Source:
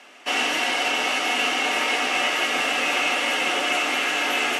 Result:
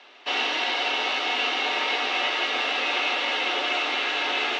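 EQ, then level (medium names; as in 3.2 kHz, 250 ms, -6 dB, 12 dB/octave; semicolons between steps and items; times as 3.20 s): cabinet simulation 300–5200 Hz, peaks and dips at 390 Hz +5 dB, 940 Hz +4 dB, 3.8 kHz +10 dB; -4.0 dB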